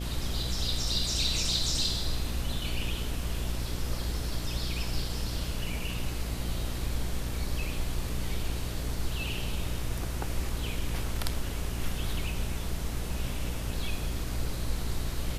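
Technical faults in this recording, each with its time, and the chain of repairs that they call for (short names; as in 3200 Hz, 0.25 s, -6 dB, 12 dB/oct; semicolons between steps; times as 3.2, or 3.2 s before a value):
buzz 60 Hz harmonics 11 -35 dBFS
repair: de-hum 60 Hz, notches 11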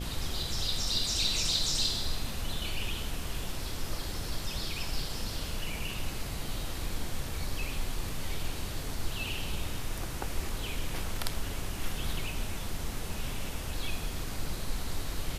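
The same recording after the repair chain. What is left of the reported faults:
none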